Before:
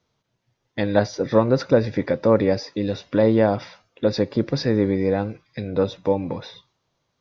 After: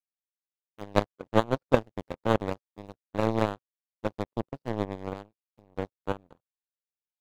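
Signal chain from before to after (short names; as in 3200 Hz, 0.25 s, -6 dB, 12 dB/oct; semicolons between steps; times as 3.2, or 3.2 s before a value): median filter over 25 samples; power-law curve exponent 3; gain +3 dB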